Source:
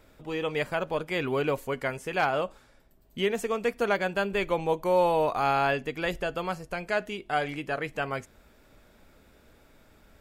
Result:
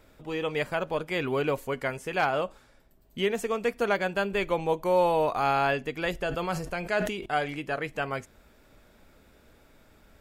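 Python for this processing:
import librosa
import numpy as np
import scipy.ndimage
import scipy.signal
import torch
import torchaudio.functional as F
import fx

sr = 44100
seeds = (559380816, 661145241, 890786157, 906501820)

y = fx.sustainer(x, sr, db_per_s=56.0, at=(6.23, 7.26))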